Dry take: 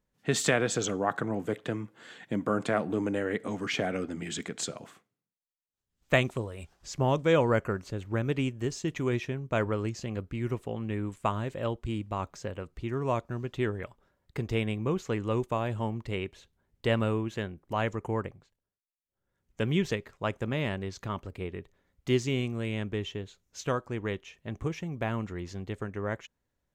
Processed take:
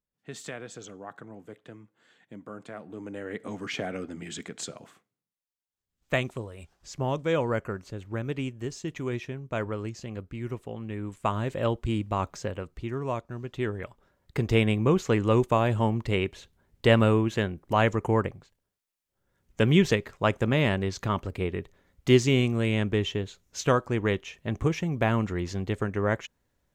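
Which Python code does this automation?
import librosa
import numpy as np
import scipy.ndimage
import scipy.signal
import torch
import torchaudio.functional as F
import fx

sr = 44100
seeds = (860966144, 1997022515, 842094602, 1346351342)

y = fx.gain(x, sr, db=fx.line((2.79, -13.5), (3.48, -2.5), (10.95, -2.5), (11.55, 5.0), (12.36, 5.0), (13.26, -3.0), (14.56, 7.0)))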